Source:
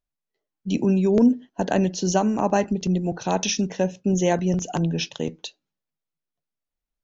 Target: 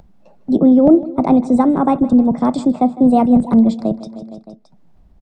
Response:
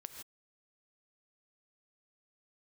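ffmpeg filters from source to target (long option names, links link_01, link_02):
-filter_complex "[0:a]acrossover=split=210|1900[link_01][link_02][link_03];[link_01]acontrast=75[link_04];[link_04][link_02][link_03]amix=inputs=3:normalize=0,bass=frequency=250:gain=7,treble=frequency=4000:gain=-15,asplit=2[link_05][link_06];[link_06]aecho=0:1:209|418|627|836:0.126|0.0667|0.0354|0.0187[link_07];[link_05][link_07]amix=inputs=2:normalize=0,acompressor=mode=upward:threshold=-22dB:ratio=2.5,equalizer=frequency=125:width_type=o:width=1:gain=10,equalizer=frequency=500:width_type=o:width=1:gain=11,equalizer=frequency=2000:width_type=o:width=1:gain=-4,asetrate=59535,aresample=44100,volume=-4dB"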